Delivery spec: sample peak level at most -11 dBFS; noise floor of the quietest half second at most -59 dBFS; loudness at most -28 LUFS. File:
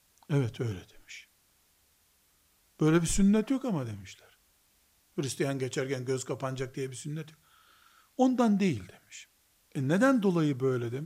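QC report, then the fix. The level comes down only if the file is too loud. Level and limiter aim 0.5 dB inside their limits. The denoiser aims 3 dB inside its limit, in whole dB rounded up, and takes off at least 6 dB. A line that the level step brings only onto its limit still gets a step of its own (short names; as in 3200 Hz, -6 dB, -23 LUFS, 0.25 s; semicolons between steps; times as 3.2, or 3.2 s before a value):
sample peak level -13.0 dBFS: OK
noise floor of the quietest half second -68 dBFS: OK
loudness -29.5 LUFS: OK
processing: none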